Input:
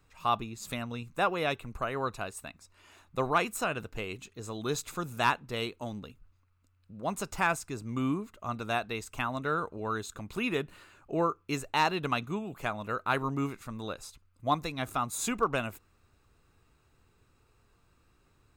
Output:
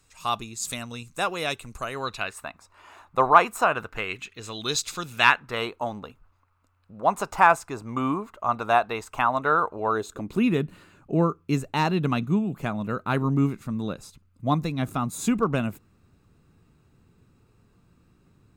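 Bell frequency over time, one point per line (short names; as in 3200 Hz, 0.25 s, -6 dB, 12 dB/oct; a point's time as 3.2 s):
bell +14 dB 1.9 oct
1.93 s 7700 Hz
2.48 s 960 Hz
3.68 s 960 Hz
4.87 s 5100 Hz
5.7 s 900 Hz
9.79 s 900 Hz
10.5 s 180 Hz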